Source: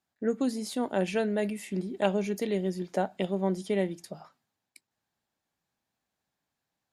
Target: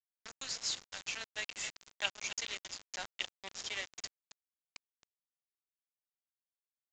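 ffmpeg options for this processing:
ffmpeg -i in.wav -filter_complex "[0:a]highshelf=frequency=5400:gain=8.5,asplit=3[link_01][link_02][link_03];[link_01]afade=type=out:start_time=0.56:duration=0.02[link_04];[link_02]acompressor=threshold=-31dB:ratio=5,afade=type=in:start_time=0.56:duration=0.02,afade=type=out:start_time=1.2:duration=0.02[link_05];[link_03]afade=type=in:start_time=1.2:duration=0.02[link_06];[link_04][link_05][link_06]amix=inputs=3:normalize=0,asuperpass=centerf=5100:order=4:qfactor=0.58,asplit=2[link_07][link_08];[link_08]aecho=0:1:269:0.251[link_09];[link_07][link_09]amix=inputs=2:normalize=0,acrusher=bits=6:mix=0:aa=0.000001,aresample=16000,aresample=44100,volume=3.5dB" out.wav

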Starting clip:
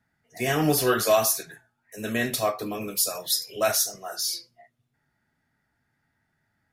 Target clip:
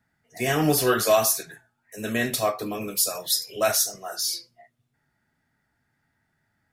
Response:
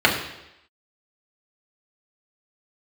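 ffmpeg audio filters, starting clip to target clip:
-af "equalizer=frequency=8000:width=5.1:gain=2.5,volume=1dB"

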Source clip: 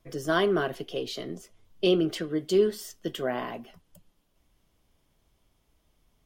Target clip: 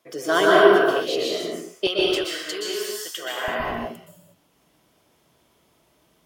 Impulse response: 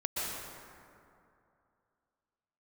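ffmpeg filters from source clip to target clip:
-filter_complex "[0:a]asetnsamples=nb_out_samples=441:pad=0,asendcmd='1.87 highpass f 1100;3.48 highpass f 170',highpass=370[link_01];[1:a]atrim=start_sample=2205,afade=type=out:start_time=0.43:duration=0.01,atrim=end_sample=19404[link_02];[link_01][link_02]afir=irnorm=-1:irlink=0,volume=6.5dB"

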